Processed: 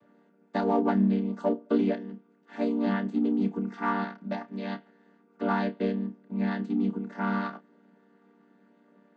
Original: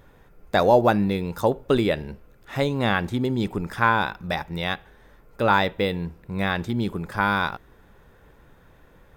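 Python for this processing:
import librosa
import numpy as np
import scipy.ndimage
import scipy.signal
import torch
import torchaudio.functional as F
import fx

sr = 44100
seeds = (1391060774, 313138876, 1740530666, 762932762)

p1 = fx.chord_vocoder(x, sr, chord='minor triad', root=55)
p2 = 10.0 ** (-23.0 / 20.0) * np.tanh(p1 / 10.0 ** (-23.0 / 20.0))
p3 = p1 + (p2 * 10.0 ** (-9.0 / 20.0))
p4 = fx.doubler(p3, sr, ms=30.0, db=-12.5)
y = p4 * 10.0 ** (-6.5 / 20.0)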